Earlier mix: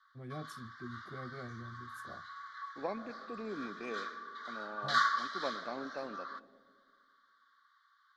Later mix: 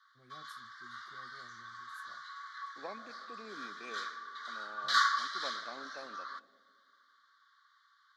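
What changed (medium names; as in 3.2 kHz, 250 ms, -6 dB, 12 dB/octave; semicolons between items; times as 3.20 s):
first voice -12.0 dB; second voice -5.0 dB; master: add tilt EQ +2.5 dB/octave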